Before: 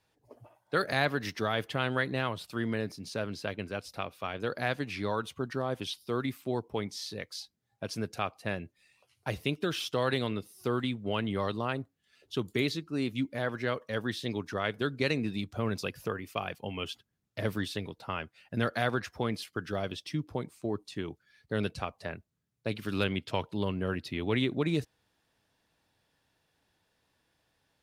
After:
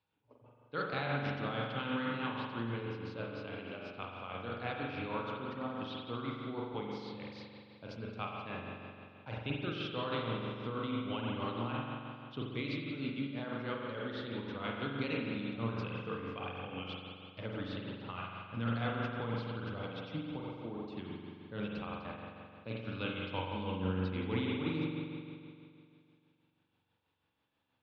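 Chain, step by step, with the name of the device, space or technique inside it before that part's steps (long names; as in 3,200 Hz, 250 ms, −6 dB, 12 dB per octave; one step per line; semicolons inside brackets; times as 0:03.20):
combo amplifier with spring reverb and tremolo (spring reverb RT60 2.4 s, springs 43 ms, chirp 50 ms, DRR −3.5 dB; amplitude tremolo 6.2 Hz, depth 42%; loudspeaker in its box 82–3,700 Hz, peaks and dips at 180 Hz −4 dB, 380 Hz −8 dB, 660 Hz −8 dB, 1,800 Hz −10 dB)
level −5.5 dB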